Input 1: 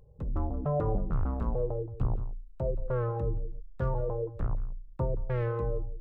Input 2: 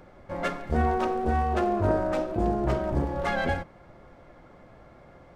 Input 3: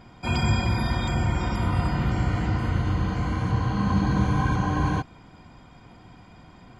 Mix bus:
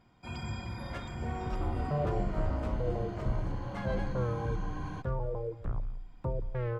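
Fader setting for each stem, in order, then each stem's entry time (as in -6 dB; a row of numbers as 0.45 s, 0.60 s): -3.5 dB, -14.5 dB, -15.5 dB; 1.25 s, 0.50 s, 0.00 s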